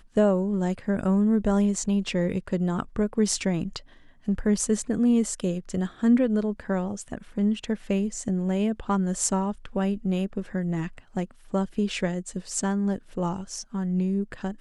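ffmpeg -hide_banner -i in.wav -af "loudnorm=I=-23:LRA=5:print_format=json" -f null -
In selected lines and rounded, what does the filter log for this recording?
"input_i" : "-26.8",
"input_tp" : "-7.6",
"input_lra" : "3.7",
"input_thresh" : "-36.8",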